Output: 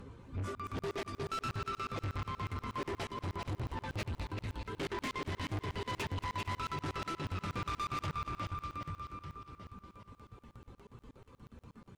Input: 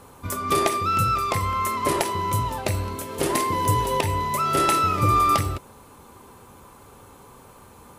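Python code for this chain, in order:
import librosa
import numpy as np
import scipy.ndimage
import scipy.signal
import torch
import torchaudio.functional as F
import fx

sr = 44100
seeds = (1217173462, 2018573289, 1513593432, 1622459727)

p1 = fx.spacing_loss(x, sr, db_at_10k=31)
p2 = fx.echo_wet_highpass(p1, sr, ms=139, feedback_pct=66, hz=2800.0, wet_db=-5.0)
p3 = fx.dereverb_blind(p2, sr, rt60_s=1.8)
p4 = fx.spec_box(p3, sr, start_s=2.5, length_s=1.98, low_hz=840.0, high_hz=4900.0, gain_db=7)
p5 = fx.stretch_vocoder_free(p4, sr, factor=1.5)
p6 = fx.peak_eq(p5, sr, hz=790.0, db=-13.5, octaves=1.8)
p7 = fx.fold_sine(p6, sr, drive_db=7, ceiling_db=-17.5)
p8 = p7 + fx.echo_feedback(p7, sr, ms=395, feedback_pct=53, wet_db=-6.5, dry=0)
p9 = 10.0 ** (-29.5 / 20.0) * np.tanh(p8 / 10.0 ** (-29.5 / 20.0))
p10 = fx.buffer_crackle(p9, sr, first_s=0.55, period_s=0.12, block=2048, kind='zero')
p11 = fx.echo_crushed(p10, sr, ms=226, feedback_pct=55, bits=11, wet_db=-14.5)
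y = F.gain(torch.from_numpy(p11), -5.0).numpy()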